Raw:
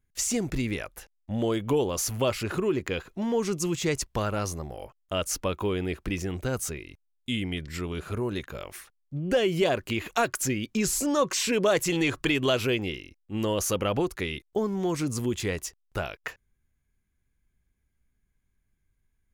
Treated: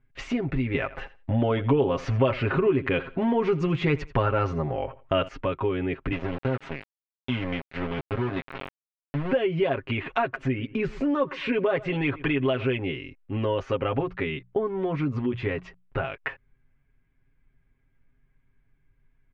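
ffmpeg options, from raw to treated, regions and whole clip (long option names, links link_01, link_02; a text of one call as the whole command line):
ffmpeg -i in.wav -filter_complex "[0:a]asettb=1/sr,asplit=3[link_01][link_02][link_03];[link_01]atrim=end=0.744[link_04];[link_02]atrim=start=0.74:end=5.28,asetpts=PTS-STARTPTS,afade=type=in:duration=0.004:curve=qsin,afade=type=out:start_time=4.536:duration=0.004:curve=qsin,acontrast=79,aecho=1:1:84|168:0.112|0.0202,atrim=end_sample=200214[link_05];[link_03]atrim=start=5.276[link_06];[link_04][link_05]acrossfade=duration=0.004:curve1=hsin:curve2=qsin[link_07];[link_07][link_06]acrossfade=duration=0.004:curve1=qsin:curve2=hsin,asettb=1/sr,asplit=3[link_08][link_09][link_10];[link_08]atrim=end=6.124[link_11];[link_09]atrim=start=6.12:end=9.33,asetpts=PTS-STARTPTS,afade=type=in:duration=0.004:curve=qsin,afade=type=out:start_time=3.206:duration=0.004:curve=qsin,highpass=frequency=67:width=0.5412,highpass=frequency=67:width=1.3066,aeval=exprs='val(0)*gte(abs(val(0)),0.0316)':channel_layout=same[link_12];[link_10]atrim=start=9.326[link_13];[link_11][link_12]acrossfade=duration=0.004:curve1=hsin:curve2=qsin[link_14];[link_14][link_13]acrossfade=duration=0.004:curve1=qsin:curve2=hsin,asettb=1/sr,asplit=3[link_15][link_16][link_17];[link_15]atrim=end=10.214[link_18];[link_16]atrim=start=10.21:end=12.64,asetpts=PTS-STARTPTS,afade=type=in:duration=0.004:curve=qsin,afade=type=out:start_time=2.426:duration=0.004:curve=qsin,equalizer=frequency=6600:width_type=o:width=1.7:gain=-5,asplit=2[link_19][link_20];[link_20]adelay=120,lowpass=frequency=2600:poles=1,volume=-20.5dB,asplit=2[link_21][link_22];[link_22]adelay=120,lowpass=frequency=2600:poles=1,volume=0.3[link_23];[link_19][link_21][link_23]amix=inputs=3:normalize=0,atrim=end_sample=107163[link_24];[link_17]atrim=start=12.636[link_25];[link_18][link_24]acrossfade=duration=0.004:curve1=hsin:curve2=qsin[link_26];[link_26][link_25]acrossfade=duration=0.004:curve1=qsin:curve2=hsin,asettb=1/sr,asplit=3[link_27][link_28][link_29];[link_27]atrim=end=13.654[link_30];[link_28]atrim=start=13.65:end=16.04,asetpts=PTS-STARTPTS,afade=type=in:duration=0.004:curve=qsin,afade=type=out:start_time=2.386:duration=0.004:curve=qsin,highshelf=frequency=7300:gain=-7.5,bandreject=frequency=60:width_type=h:width=6,bandreject=frequency=120:width_type=h:width=6,bandreject=frequency=180:width_type=h:width=6[link_31];[link_29]atrim=start=16.036[link_32];[link_30][link_31]acrossfade=duration=0.004:curve1=hsin:curve2=qsin[link_33];[link_33][link_32]acrossfade=duration=0.004:curve1=qsin:curve2=hsin,lowpass=frequency=2700:width=0.5412,lowpass=frequency=2700:width=1.3066,aecho=1:1:7.4:0.75,acompressor=threshold=-35dB:ratio=2,volume=6.5dB" out.wav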